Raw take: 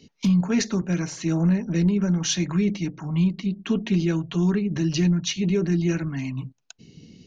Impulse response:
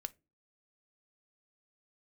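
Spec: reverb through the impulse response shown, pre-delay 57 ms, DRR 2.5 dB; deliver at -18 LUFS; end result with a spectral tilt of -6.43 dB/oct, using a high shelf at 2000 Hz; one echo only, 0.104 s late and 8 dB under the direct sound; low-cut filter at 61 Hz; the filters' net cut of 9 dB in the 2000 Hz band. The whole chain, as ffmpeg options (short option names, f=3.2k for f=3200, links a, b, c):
-filter_complex "[0:a]highpass=61,highshelf=f=2k:g=-8,equalizer=f=2k:t=o:g=-6.5,aecho=1:1:104:0.398,asplit=2[a][b];[1:a]atrim=start_sample=2205,adelay=57[c];[b][c]afir=irnorm=-1:irlink=0,volume=0dB[d];[a][d]amix=inputs=2:normalize=0,volume=4dB"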